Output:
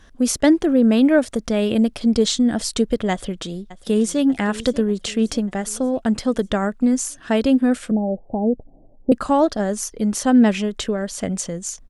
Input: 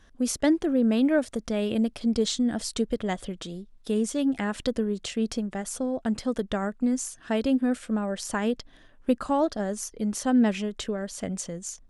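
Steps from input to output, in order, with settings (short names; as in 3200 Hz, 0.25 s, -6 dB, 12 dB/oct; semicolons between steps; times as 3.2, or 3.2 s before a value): 3.11–4.22 echo throw 0.59 s, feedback 55%, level -16.5 dB; 7.91–9.12 Chebyshev low-pass 820 Hz, order 6; gain +7.5 dB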